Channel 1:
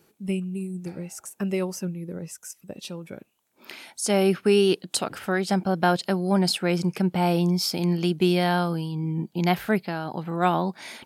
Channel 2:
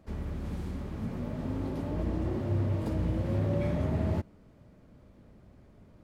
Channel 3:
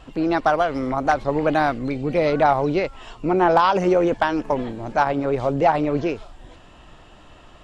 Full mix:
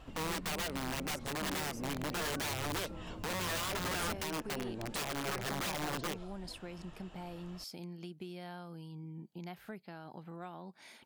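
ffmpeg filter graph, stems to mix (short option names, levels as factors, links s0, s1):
-filter_complex "[0:a]acompressor=threshold=0.0447:ratio=6,volume=0.168[s0];[1:a]acompressor=threshold=0.01:ratio=2.5,flanger=delay=22.5:depth=6.4:speed=0.19,volume=0.501[s1];[2:a]acompressor=threshold=0.0355:ratio=2,aeval=exprs='(mod(15*val(0)+1,2)-1)/15':c=same,volume=0.376[s2];[s0][s1][s2]amix=inputs=3:normalize=0"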